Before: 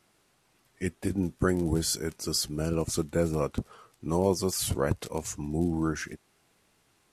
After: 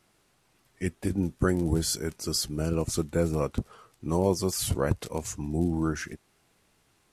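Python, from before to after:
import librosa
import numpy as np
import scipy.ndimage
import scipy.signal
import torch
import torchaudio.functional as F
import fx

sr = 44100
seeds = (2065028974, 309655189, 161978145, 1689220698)

y = fx.low_shelf(x, sr, hz=100.0, db=5.0)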